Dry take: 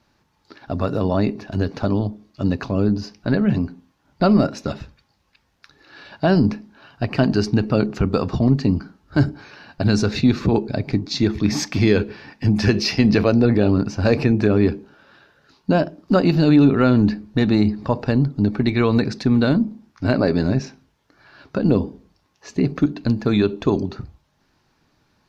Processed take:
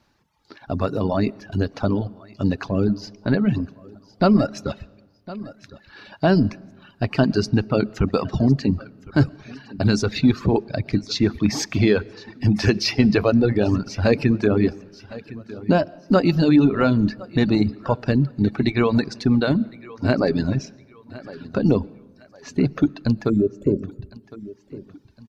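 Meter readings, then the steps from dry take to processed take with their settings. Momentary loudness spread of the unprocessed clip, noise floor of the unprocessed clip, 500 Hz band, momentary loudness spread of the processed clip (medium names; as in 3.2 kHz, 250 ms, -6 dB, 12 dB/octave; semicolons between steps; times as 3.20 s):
9 LU, -65 dBFS, -1.0 dB, 19 LU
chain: time-frequency box 23.30–24.22 s, 620–6800 Hz -26 dB; on a send: feedback delay 1059 ms, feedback 38%, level -17.5 dB; on the sum: algorithmic reverb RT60 1.2 s, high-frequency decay 0.55×, pre-delay 80 ms, DRR 14 dB; reverb removal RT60 1.2 s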